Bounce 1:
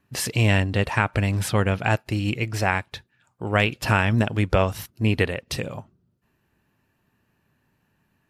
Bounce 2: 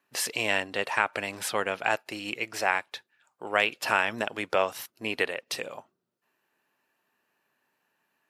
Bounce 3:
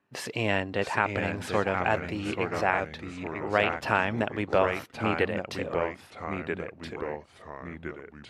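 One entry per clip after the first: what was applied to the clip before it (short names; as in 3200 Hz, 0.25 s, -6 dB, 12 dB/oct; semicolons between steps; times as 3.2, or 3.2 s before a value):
HPF 480 Hz 12 dB/oct; gain -2 dB
RIAA curve playback; echoes that change speed 0.649 s, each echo -2 st, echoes 3, each echo -6 dB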